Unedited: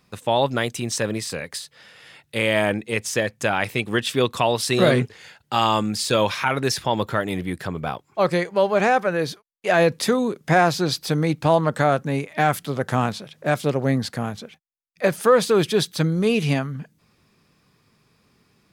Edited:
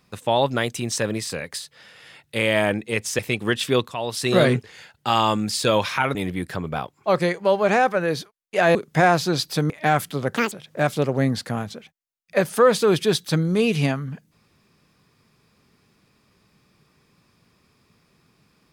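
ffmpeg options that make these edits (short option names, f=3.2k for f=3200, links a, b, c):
-filter_complex "[0:a]asplit=8[a][b][c][d][e][f][g][h];[a]atrim=end=3.192[i];[b]atrim=start=3.648:end=4.34,asetpts=PTS-STARTPTS,afade=t=out:st=0.688:d=0.004:c=hsin:silence=0.199526[j];[c]atrim=start=4.34:end=6.612,asetpts=PTS-STARTPTS,afade=t=in:d=0.5:silence=0.199526[k];[d]atrim=start=7.258:end=9.862[l];[e]atrim=start=10.278:end=11.232[m];[f]atrim=start=12.238:end=12.914[n];[g]atrim=start=12.91:end=13.19,asetpts=PTS-STARTPTS,asetrate=83349,aresample=44100,atrim=end_sample=6533,asetpts=PTS-STARTPTS[o];[h]atrim=start=13.186[p];[j][k]concat=n=2:v=0:a=1[q];[i][q]acrossfade=d=0.004:c1=hsin:c2=hsin[r];[r][l]acrossfade=d=0.004:c1=hsin:c2=hsin[s];[s][m]acrossfade=d=0.004:c1=hsin:c2=hsin[t];[t][n]acrossfade=d=0.004:c1=hsin:c2=hsin[u];[u][o]acrossfade=d=0.004:c1=hsin:c2=hsin[v];[v][p]acrossfade=d=0.004:c1=hsin:c2=hsin"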